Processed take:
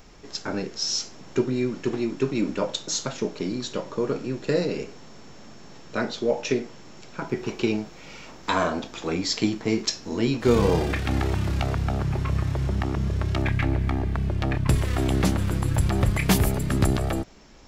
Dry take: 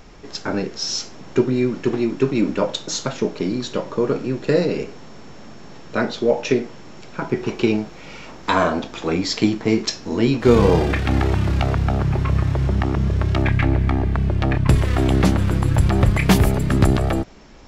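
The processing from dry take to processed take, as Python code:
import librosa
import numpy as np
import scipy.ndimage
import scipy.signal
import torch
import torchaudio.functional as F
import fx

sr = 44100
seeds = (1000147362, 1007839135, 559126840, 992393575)

y = fx.high_shelf(x, sr, hz=5600.0, db=9.0)
y = y * librosa.db_to_amplitude(-6.0)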